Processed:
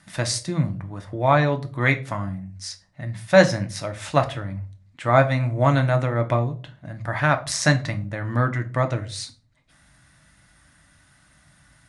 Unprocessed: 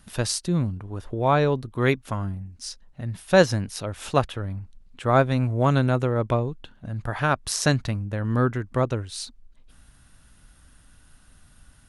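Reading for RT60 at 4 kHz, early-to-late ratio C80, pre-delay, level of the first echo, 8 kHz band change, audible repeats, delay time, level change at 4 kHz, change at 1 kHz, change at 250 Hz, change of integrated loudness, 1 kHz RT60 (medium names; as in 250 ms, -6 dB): 0.25 s, 21.0 dB, 3 ms, no echo, +1.0 dB, no echo, no echo, +1.5 dB, +2.5 dB, 0.0 dB, +2.0 dB, 0.35 s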